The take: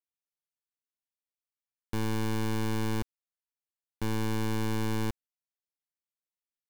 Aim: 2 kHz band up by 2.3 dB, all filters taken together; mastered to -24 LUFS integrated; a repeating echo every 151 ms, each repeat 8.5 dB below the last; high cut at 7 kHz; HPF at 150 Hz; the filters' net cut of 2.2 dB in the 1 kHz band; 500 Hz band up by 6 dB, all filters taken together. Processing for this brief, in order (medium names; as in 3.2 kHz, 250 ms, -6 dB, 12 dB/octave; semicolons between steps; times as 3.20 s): high-pass 150 Hz; low-pass 7 kHz; peaking EQ 500 Hz +8.5 dB; peaking EQ 1 kHz -6 dB; peaking EQ 2 kHz +4.5 dB; feedback delay 151 ms, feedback 38%, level -8.5 dB; trim +8 dB